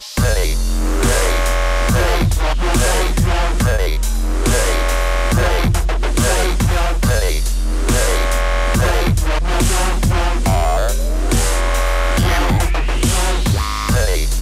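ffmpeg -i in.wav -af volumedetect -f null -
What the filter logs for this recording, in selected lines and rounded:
mean_volume: -14.5 dB
max_volume: -7.5 dB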